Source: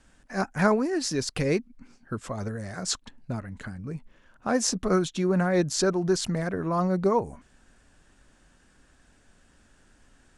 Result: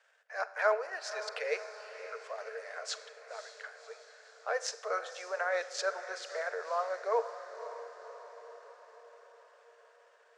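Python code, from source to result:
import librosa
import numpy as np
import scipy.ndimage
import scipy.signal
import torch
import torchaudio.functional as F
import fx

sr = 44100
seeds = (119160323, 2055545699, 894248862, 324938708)

p1 = scipy.signal.sosfilt(scipy.signal.butter(2, 5700.0, 'lowpass', fs=sr, output='sos'), x)
p2 = fx.transient(p1, sr, attack_db=-4, sustain_db=-8)
p3 = scipy.signal.sosfilt(scipy.signal.cheby1(6, 6, 440.0, 'highpass', fs=sr, output='sos'), p2)
p4 = p3 + fx.echo_diffused(p3, sr, ms=543, feedback_pct=58, wet_db=-12, dry=0)
y = fx.rev_schroeder(p4, sr, rt60_s=0.92, comb_ms=32, drr_db=15.0)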